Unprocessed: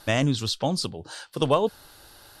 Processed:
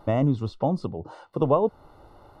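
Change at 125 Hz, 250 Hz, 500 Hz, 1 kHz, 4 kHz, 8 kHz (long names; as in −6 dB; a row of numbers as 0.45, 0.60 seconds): +1.5 dB, +1.5 dB, +1.5 dB, 0.0 dB, below −15 dB, below −20 dB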